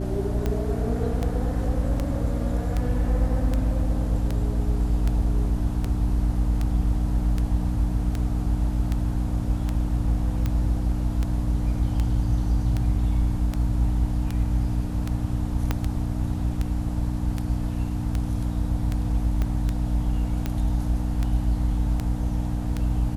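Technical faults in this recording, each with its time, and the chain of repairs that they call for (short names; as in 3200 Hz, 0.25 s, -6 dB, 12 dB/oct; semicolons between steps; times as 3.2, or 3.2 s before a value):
hum 60 Hz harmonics 5 -28 dBFS
tick 78 rpm -14 dBFS
15.71 pop -10 dBFS
19.42 pop -15 dBFS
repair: de-click; de-hum 60 Hz, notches 5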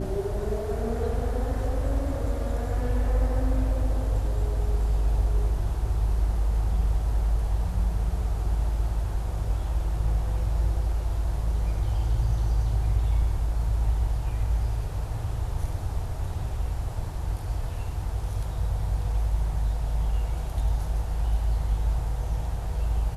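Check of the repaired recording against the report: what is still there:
15.71 pop
19.42 pop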